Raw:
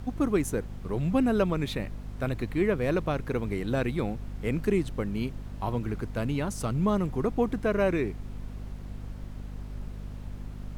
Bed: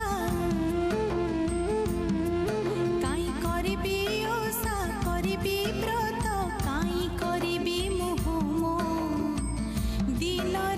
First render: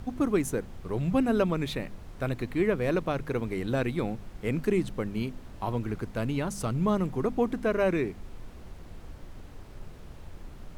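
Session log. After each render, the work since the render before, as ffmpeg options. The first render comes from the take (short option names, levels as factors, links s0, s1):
-af "bandreject=f=50:t=h:w=4,bandreject=f=100:t=h:w=4,bandreject=f=150:t=h:w=4,bandreject=f=200:t=h:w=4,bandreject=f=250:t=h:w=4"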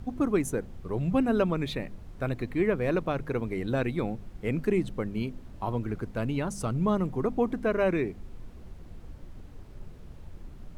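-af "afftdn=nr=6:nf=-46"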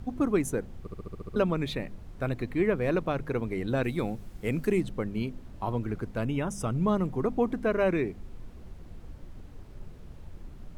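-filter_complex "[0:a]asettb=1/sr,asplit=3[s0][s1][s2];[s0]atrim=end=3.834[s3];[s1]atrim=start=3.83:end=4.81,asetpts=PTS-STARTPTS,afade=t=in:d=0.004:c=qsin,afade=t=out:st=0.976:d=0.004:c=qsin,aemphasis=mode=production:type=cd[s4];[s2]atrim=start=4.806[s5];[s3][s4]acrossfade=d=0.004:c1=hsin:c2=qsin[s6];[s6][s5]acrossfade=d=0.004:c1=qsin:c2=hsin,asettb=1/sr,asplit=3[s7][s8][s9];[s7]atrim=end=6.254[s10];[s8]atrim=start=6.25:end=6.72,asetpts=PTS-STARTPTS,afade=t=in:d=0.004:c=qsin,afade=t=out:st=0.466:d=0.004:c=qsin,asuperstop=centerf=4300:order=20:qfactor=4.5[s11];[s9]atrim=start=6.716[s12];[s10][s11]acrossfade=d=0.004:c1=hsin:c2=qsin[s13];[s13][s12]acrossfade=d=0.004:c1=qsin:c2=hsin,asplit=9[s14][s15][s16][s17][s18][s19][s20][s21][s22];[s14]atrim=end=0.872[s23];[s15]atrim=start=0.798:end=0.872[s24];[s16]atrim=start=0.798:end=0.872[s25];[s17]atrim=start=0.798:end=0.872[s26];[s18]atrim=start=0.798:end=0.872[s27];[s19]atrim=start=0.798:end=0.872[s28];[s20]atrim=start=0.798:end=0.872[s29];[s21]atrim=start=0.798:end=0.872[s30];[s22]atrim=start=1.358[s31];[s23][s24]acrossfade=d=0.004:c1=hsin:c2=hsin[s32];[s32][s25]acrossfade=d=0.004:c1=hsin:c2=hsin[s33];[s33][s26]acrossfade=d=0.004:c1=hsin:c2=hsin[s34];[s34][s27]acrossfade=d=0.004:c1=hsin:c2=hsin[s35];[s35][s28]acrossfade=d=0.004:c1=hsin:c2=hsin[s36];[s36][s29]acrossfade=d=0.004:c1=hsin:c2=hsin[s37];[s37][s30]acrossfade=d=0.004:c1=hsin:c2=hsin[s38];[s38][s31]acrossfade=d=0.004:c1=hsin:c2=hsin"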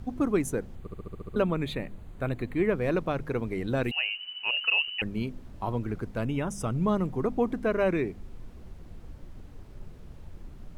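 -filter_complex "[0:a]asettb=1/sr,asplit=3[s0][s1][s2];[s0]atrim=end=0.754[s3];[s1]atrim=start=0.75:end=2.69,asetpts=PTS-STARTPTS,afade=t=in:d=0.004:c=qsin,afade=t=out:st=1.936:d=0.004:c=qsin,equalizer=f=5400:w=4.9:g=-14[s4];[s2]atrim=start=2.686[s5];[s3][s4]acrossfade=d=0.004:c1=hsin:c2=qsin[s6];[s6][s5]acrossfade=d=0.004:c1=qsin:c2=hsin,asettb=1/sr,asplit=3[s7][s8][s9];[s7]atrim=end=3.914[s10];[s8]atrim=start=3.91:end=5.02,asetpts=PTS-STARTPTS,afade=t=in:d=0.004:c=qsin,afade=t=out:st=1.106:d=0.004:c=qsin,lowpass=f=2600:t=q:w=0.5098,lowpass=f=2600:t=q:w=0.6013,lowpass=f=2600:t=q:w=0.9,lowpass=f=2600:t=q:w=2.563,afreqshift=-3000[s11];[s9]atrim=start=5.016[s12];[s10][s11]acrossfade=d=0.004:c1=hsin:c2=qsin[s13];[s13][s12]acrossfade=d=0.004:c1=qsin:c2=hsin"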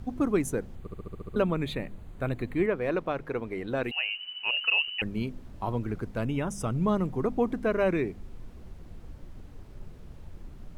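-filter_complex "[0:a]asettb=1/sr,asplit=3[s0][s1][s2];[s0]atrim=end=2.664[s3];[s1]atrim=start=2.66:end=4.09,asetpts=PTS-STARTPTS,afade=t=in:d=0.004:c=qsin,afade=t=out:st=1.426:d=0.004:c=qsin,bass=f=250:g=-8,treble=f=4000:g=-7[s4];[s2]atrim=start=4.086[s5];[s3][s4]acrossfade=d=0.004:c1=hsin:c2=qsin[s6];[s6][s5]acrossfade=d=0.004:c1=qsin:c2=hsin"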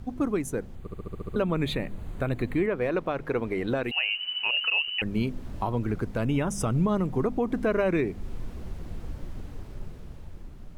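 -af "dynaudnorm=f=250:g=11:m=2.66,alimiter=limit=0.141:level=0:latency=1:release=298"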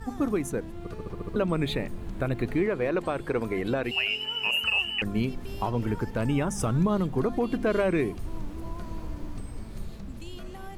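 -filter_complex "[1:a]volume=0.178[s0];[0:a][s0]amix=inputs=2:normalize=0"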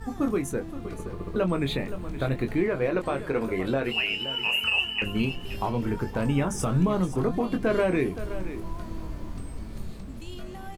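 -filter_complex "[0:a]asplit=2[s0][s1];[s1]adelay=22,volume=0.447[s2];[s0][s2]amix=inputs=2:normalize=0,aecho=1:1:521:0.224"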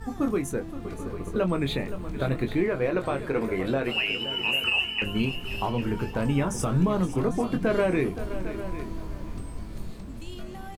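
-af "aecho=1:1:799:0.2"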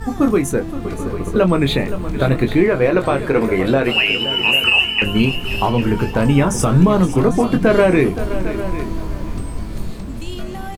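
-af "volume=3.55"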